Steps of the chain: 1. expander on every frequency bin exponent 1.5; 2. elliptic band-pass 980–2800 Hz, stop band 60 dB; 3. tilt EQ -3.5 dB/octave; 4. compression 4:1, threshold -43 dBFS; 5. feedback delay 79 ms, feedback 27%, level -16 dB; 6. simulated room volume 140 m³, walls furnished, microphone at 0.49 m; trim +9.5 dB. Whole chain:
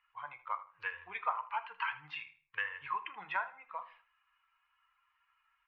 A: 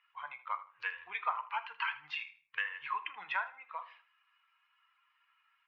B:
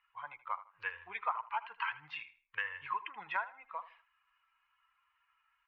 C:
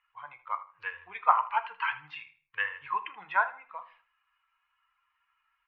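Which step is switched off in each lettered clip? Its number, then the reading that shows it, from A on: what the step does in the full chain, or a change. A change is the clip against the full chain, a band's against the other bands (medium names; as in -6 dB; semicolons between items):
3, 4 kHz band +4.5 dB; 6, echo-to-direct -9.0 dB to -15.5 dB; 4, momentary loudness spread change +10 LU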